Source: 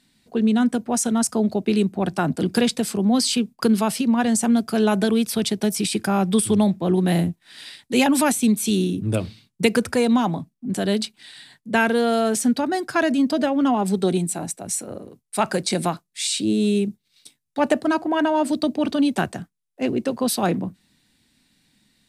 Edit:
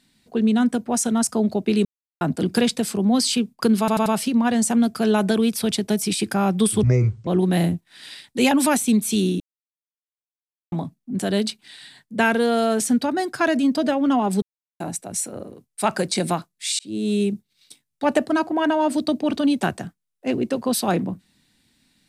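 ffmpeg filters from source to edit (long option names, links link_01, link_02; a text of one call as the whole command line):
ffmpeg -i in.wav -filter_complex "[0:a]asplit=13[link_01][link_02][link_03][link_04][link_05][link_06][link_07][link_08][link_09][link_10][link_11][link_12][link_13];[link_01]atrim=end=1.85,asetpts=PTS-STARTPTS,afade=type=out:start_time=1.846:duration=0.004:curve=hsin[link_14];[link_02]atrim=start=1.85:end=2.21,asetpts=PTS-STARTPTS,volume=0[link_15];[link_03]atrim=start=2.21:end=3.882,asetpts=PTS-STARTPTS,afade=type=in:duration=0.004:curve=hsin[link_16];[link_04]atrim=start=3.788:end=3.882[link_17];[link_05]atrim=start=3.788:end=3.882[link_18];[link_06]atrim=start=3.788:end=6.564[link_19];[link_07]atrim=start=6.56:end=6.82,asetpts=PTS-STARTPTS,asetrate=26019,aresample=44100[link_20];[link_08]atrim=start=6.816:end=8.95,asetpts=PTS-STARTPTS,afade=type=out:start_time=2.13:duration=0.004:curve=hsin[link_21];[link_09]atrim=start=8.95:end=10.27,asetpts=PTS-STARTPTS,volume=0[link_22];[link_10]atrim=start=10.27:end=13.97,asetpts=PTS-STARTPTS,afade=type=in:duration=0.004:curve=hsin,afade=type=out:start_time=3.696:duration=0.004:curve=hsin[link_23];[link_11]atrim=start=13.97:end=14.35,asetpts=PTS-STARTPTS,volume=0[link_24];[link_12]atrim=start=14.35:end=16.34,asetpts=PTS-STARTPTS,afade=type=in:duration=0.004:curve=hsin,afade=type=out:start_time=1.986:duration=0.004:curve=hsin[link_25];[link_13]atrim=start=16.34,asetpts=PTS-STARTPTS,afade=type=in:duration=0.55:curve=qsin[link_26];[link_14][link_15][link_16]concat=n=3:v=0:a=1[link_27];[link_27][link_17]acrossfade=duration=0.004:curve1=hsin:curve2=hsin[link_28];[link_28][link_18]acrossfade=duration=0.004:curve1=hsin:curve2=hsin[link_29];[link_29][link_19]acrossfade=duration=0.004:curve1=hsin:curve2=hsin[link_30];[link_30][link_20]acrossfade=duration=0.004:curve1=hsin:curve2=hsin[link_31];[link_21][link_22][link_23][link_24][link_25][link_26]concat=n=6:v=0:a=1[link_32];[link_31][link_32]acrossfade=duration=0.004:curve1=hsin:curve2=hsin" out.wav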